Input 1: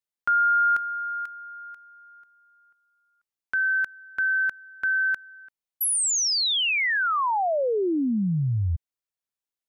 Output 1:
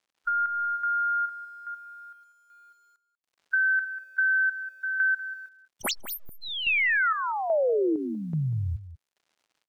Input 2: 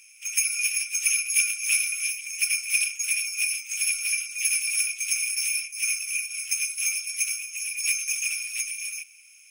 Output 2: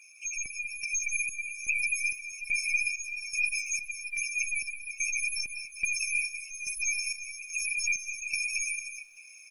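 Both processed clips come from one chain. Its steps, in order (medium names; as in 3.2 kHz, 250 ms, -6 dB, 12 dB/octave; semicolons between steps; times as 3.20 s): tracing distortion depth 0.11 ms; saturation -20.5 dBFS; crackle 190 per s -58 dBFS; spectral gate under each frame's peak -10 dB strong; square tremolo 1.2 Hz, depth 65%, duty 55%; resampled via 32 kHz; word length cut 12-bit, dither none; bass shelf 150 Hz -12 dB; echo from a far wall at 33 m, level -14 dB; compression 3:1, threshold -28 dBFS; treble shelf 8.1 kHz -7.5 dB; level rider gain up to 4 dB; trim +2 dB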